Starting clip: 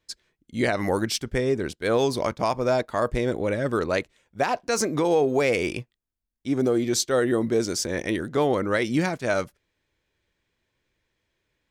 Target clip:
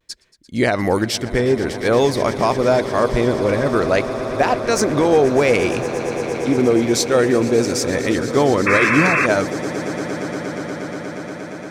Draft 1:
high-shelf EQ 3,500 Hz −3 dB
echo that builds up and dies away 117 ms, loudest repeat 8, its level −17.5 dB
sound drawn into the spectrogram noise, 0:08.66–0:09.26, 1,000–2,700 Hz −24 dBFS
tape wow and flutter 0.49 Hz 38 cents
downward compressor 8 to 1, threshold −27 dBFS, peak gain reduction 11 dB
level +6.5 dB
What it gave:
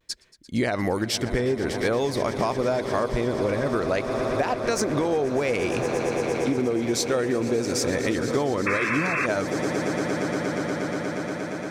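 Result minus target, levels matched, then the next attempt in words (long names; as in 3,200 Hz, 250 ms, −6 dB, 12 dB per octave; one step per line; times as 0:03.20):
downward compressor: peak gain reduction +11 dB
high-shelf EQ 3,500 Hz −3 dB
echo that builds up and dies away 117 ms, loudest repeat 8, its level −17.5 dB
sound drawn into the spectrogram noise, 0:08.66–0:09.26, 1,000–2,700 Hz −24 dBFS
tape wow and flutter 0.49 Hz 38 cents
level +6.5 dB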